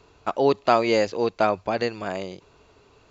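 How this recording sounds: noise floor -58 dBFS; spectral tilt -3.5 dB/octave

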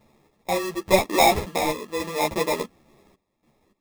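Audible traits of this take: random-step tremolo, depth 90%; aliases and images of a low sample rate 1.5 kHz, jitter 0%; a shimmering, thickened sound

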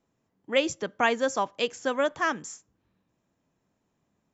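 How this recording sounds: noise floor -77 dBFS; spectral tilt -2.5 dB/octave

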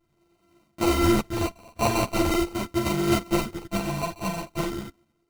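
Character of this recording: a buzz of ramps at a fixed pitch in blocks of 128 samples; phasing stages 4, 0.42 Hz, lowest notch 370–1500 Hz; aliases and images of a low sample rate 1.7 kHz, jitter 0%; a shimmering, thickened sound

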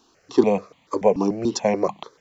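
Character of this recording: notches that jump at a steady rate 6.9 Hz 550–1500 Hz

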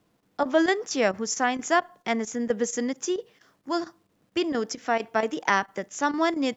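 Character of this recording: a quantiser's noise floor 12-bit, dither none; chopped level 4.4 Hz, depth 65%, duty 90%

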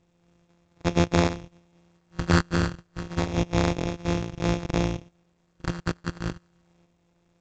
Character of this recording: a buzz of ramps at a fixed pitch in blocks of 256 samples; phasing stages 8, 0.29 Hz, lowest notch 760–2600 Hz; aliases and images of a low sample rate 3 kHz, jitter 0%; A-law

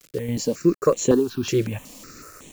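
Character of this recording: random-step tremolo, depth 55%; a quantiser's noise floor 8-bit, dither none; notches that jump at a steady rate 5.4 Hz 240–4900 Hz

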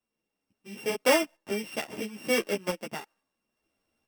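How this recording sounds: a buzz of ramps at a fixed pitch in blocks of 16 samples; tremolo saw up 0.74 Hz, depth 65%; a shimmering, thickened sound

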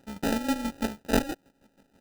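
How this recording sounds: a buzz of ramps at a fixed pitch in blocks of 32 samples; chopped level 6.2 Hz, depth 65%, duty 35%; aliases and images of a low sample rate 1.1 kHz, jitter 0%

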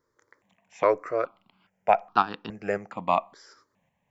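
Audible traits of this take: tremolo saw up 1.8 Hz, depth 45%; notches that jump at a steady rate 2.4 Hz 730–2100 Hz

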